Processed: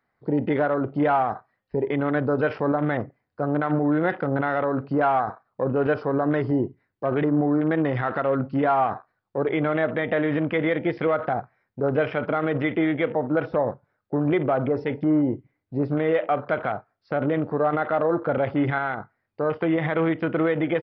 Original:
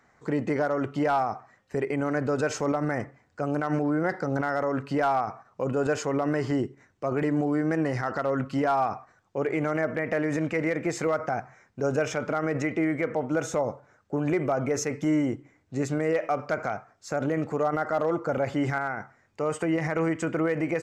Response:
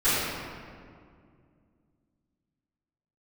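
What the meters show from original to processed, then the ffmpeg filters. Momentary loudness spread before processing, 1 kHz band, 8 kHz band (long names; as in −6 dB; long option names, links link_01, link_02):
8 LU, +3.5 dB, below −35 dB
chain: -filter_complex "[0:a]afwtdn=0.0158,asplit=2[link_01][link_02];[1:a]atrim=start_sample=2205,atrim=end_sample=3087,asetrate=52920,aresample=44100[link_03];[link_02][link_03]afir=irnorm=-1:irlink=0,volume=-28dB[link_04];[link_01][link_04]amix=inputs=2:normalize=0,aresample=11025,aresample=44100,volume=3.5dB"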